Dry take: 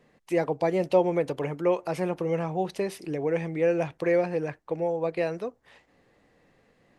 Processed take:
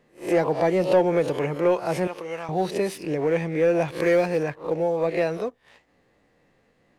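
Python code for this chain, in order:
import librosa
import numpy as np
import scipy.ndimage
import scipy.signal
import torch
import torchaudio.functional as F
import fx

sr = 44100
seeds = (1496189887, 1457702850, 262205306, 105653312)

y = fx.spec_swells(x, sr, rise_s=0.35)
y = fx.highpass(y, sr, hz=1300.0, slope=6, at=(2.07, 2.49))
y = fx.leveller(y, sr, passes=1)
y = fx.high_shelf(y, sr, hz=4000.0, db=9.0, at=(3.88, 4.43))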